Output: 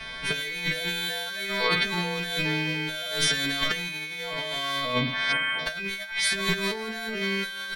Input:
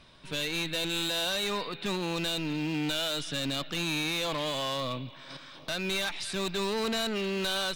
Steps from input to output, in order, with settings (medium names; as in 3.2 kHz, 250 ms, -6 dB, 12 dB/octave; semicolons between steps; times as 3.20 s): partials quantised in pitch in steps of 2 st; comb 4.5 ms, depth 70%; in parallel at +1 dB: peak limiter -22.5 dBFS, peak gain reduction 9 dB; on the sum: ten-band graphic EQ 250 Hz -7 dB, 1 kHz -3 dB, 2 kHz +5 dB, 4 kHz -6 dB, 8 kHz -5 dB, 16 kHz -6 dB; delay 78 ms -21 dB; on a send at -7.5 dB: reverberation, pre-delay 3 ms; on the sum: time-frequency box 5.32–5.59 s, 3.5–7.3 kHz -29 dB; treble shelf 8.3 kHz -6 dB; compressor with a negative ratio -30 dBFS, ratio -0.5; trim +3 dB